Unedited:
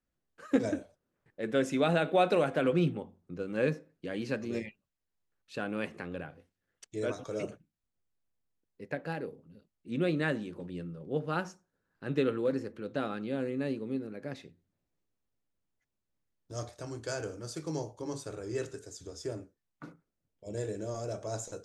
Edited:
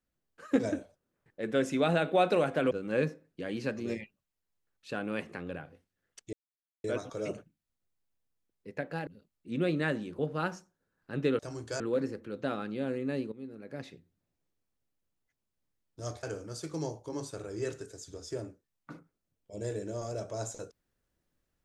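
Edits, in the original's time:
0:02.71–0:03.36: remove
0:06.98: splice in silence 0.51 s
0:09.21–0:09.47: remove
0:10.59–0:11.12: remove
0:13.84–0:14.39: fade in, from −14.5 dB
0:16.75–0:17.16: move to 0:12.32

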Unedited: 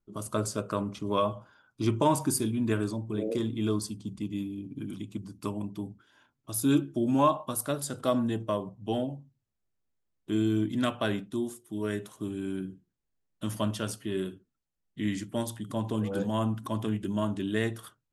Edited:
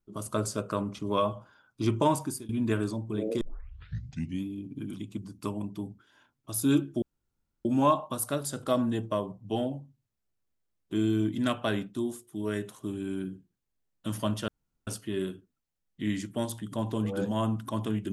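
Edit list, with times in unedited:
0:02.06–0:02.49: fade out, to −22 dB
0:03.41: tape start 1.03 s
0:07.02: splice in room tone 0.63 s
0:13.85: splice in room tone 0.39 s

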